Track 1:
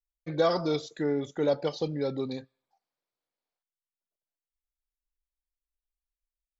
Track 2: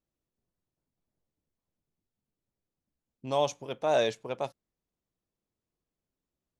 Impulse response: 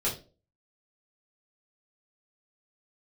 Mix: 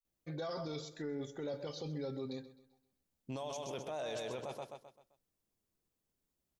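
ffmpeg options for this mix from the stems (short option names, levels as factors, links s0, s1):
-filter_complex "[0:a]aecho=1:1:7.5:0.34,volume=0.335,asplit=3[s0][s1][s2];[s1]volume=0.0668[s3];[s2]volume=0.141[s4];[1:a]acompressor=threshold=0.0398:ratio=6,adelay=50,volume=0.891,asplit=2[s5][s6];[s6]volume=0.447[s7];[2:a]atrim=start_sample=2205[s8];[s3][s8]afir=irnorm=-1:irlink=0[s9];[s4][s7]amix=inputs=2:normalize=0,aecho=0:1:130|260|390|520|650:1|0.39|0.152|0.0593|0.0231[s10];[s0][s5][s9][s10]amix=inputs=4:normalize=0,highshelf=f=6300:g=7.5,alimiter=level_in=2.82:limit=0.0631:level=0:latency=1:release=10,volume=0.355"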